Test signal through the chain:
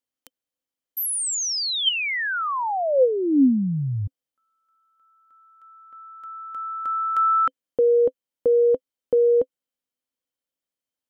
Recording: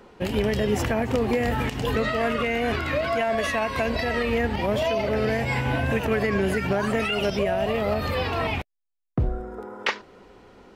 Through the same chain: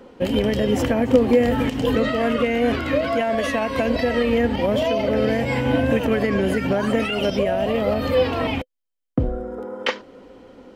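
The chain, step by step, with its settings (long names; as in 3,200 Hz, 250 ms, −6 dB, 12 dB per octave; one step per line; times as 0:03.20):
hollow resonant body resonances 270/510/3,100 Hz, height 12 dB, ringing for 50 ms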